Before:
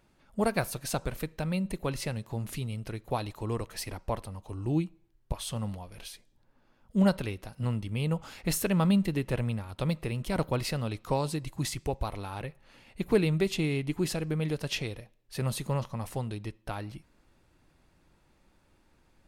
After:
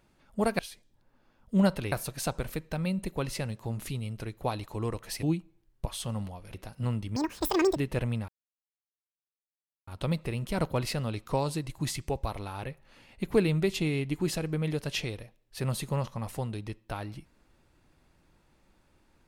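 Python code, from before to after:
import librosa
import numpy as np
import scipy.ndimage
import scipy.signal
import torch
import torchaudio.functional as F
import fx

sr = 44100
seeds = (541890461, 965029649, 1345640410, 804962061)

y = fx.edit(x, sr, fx.cut(start_s=3.9, length_s=0.8),
    fx.move(start_s=6.01, length_s=1.33, to_s=0.59),
    fx.speed_span(start_s=7.96, length_s=1.17, speed=1.94),
    fx.insert_silence(at_s=9.65, length_s=1.59), tone=tone)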